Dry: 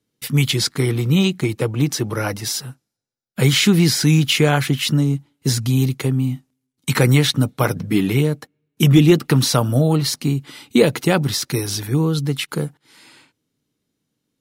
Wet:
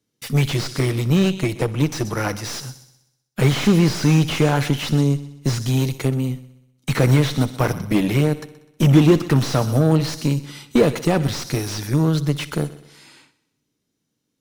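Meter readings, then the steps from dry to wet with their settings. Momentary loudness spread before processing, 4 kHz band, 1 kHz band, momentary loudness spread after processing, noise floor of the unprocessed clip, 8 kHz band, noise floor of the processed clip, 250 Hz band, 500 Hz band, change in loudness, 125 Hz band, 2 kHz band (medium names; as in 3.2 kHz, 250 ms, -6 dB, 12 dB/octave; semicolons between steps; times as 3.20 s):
9 LU, -6.5 dB, -0.5 dB, 10 LU, -78 dBFS, -6.5 dB, -75 dBFS, -1.0 dB, -1.0 dB, -1.5 dB, -1.0 dB, -3.5 dB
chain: peaking EQ 5.9 kHz +5 dB 0.41 oct; Chebyshev shaper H 8 -22 dB, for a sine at -1.5 dBFS; multi-head delay 63 ms, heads first and second, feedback 47%, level -21 dB; slew-rate limiter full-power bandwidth 210 Hz; trim -1 dB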